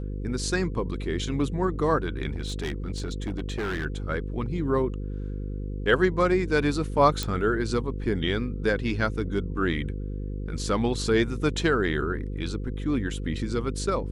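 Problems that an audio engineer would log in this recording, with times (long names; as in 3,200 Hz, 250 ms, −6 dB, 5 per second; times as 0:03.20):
mains buzz 50 Hz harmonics 10 −32 dBFS
0:02.32–0:03.86: clipping −25.5 dBFS
0:07.23: click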